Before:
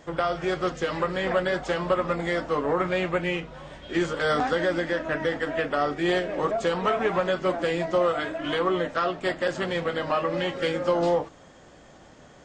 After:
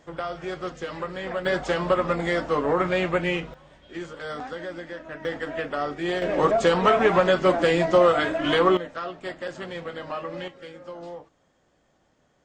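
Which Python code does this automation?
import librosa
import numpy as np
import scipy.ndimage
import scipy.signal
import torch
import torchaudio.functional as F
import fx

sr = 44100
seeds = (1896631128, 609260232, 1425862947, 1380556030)

y = fx.gain(x, sr, db=fx.steps((0.0, -5.5), (1.45, 2.0), (3.54, -10.0), (5.25, -3.0), (6.22, 5.5), (8.77, -7.0), (10.48, -15.5)))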